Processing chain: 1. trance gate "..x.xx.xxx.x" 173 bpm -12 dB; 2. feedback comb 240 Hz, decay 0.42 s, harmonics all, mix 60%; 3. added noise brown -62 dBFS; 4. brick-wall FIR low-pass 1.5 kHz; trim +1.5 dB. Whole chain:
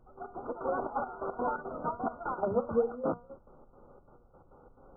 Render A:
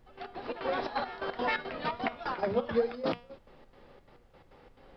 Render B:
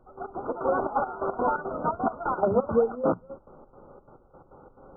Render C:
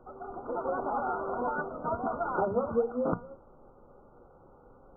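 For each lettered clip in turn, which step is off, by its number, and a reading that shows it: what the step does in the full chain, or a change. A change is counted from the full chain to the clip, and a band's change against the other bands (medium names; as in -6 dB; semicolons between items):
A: 4, momentary loudness spread change -2 LU; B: 2, loudness change +6.5 LU; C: 1, crest factor change +2.0 dB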